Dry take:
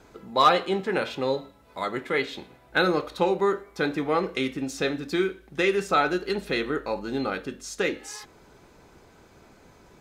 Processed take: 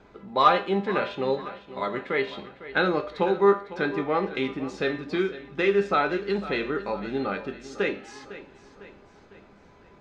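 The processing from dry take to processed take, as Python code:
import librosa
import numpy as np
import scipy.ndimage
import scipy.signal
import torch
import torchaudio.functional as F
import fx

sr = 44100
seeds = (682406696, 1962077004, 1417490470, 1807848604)

p1 = scipy.signal.sosfilt(scipy.signal.butter(2, 3400.0, 'lowpass', fs=sr, output='sos'), x)
p2 = fx.comb_fb(p1, sr, f0_hz=200.0, decay_s=0.37, harmonics='all', damping=0.0, mix_pct=70)
p3 = p2 + fx.echo_feedback(p2, sr, ms=503, feedback_pct=48, wet_db=-15.0, dry=0)
y = p3 * 10.0 ** (8.0 / 20.0)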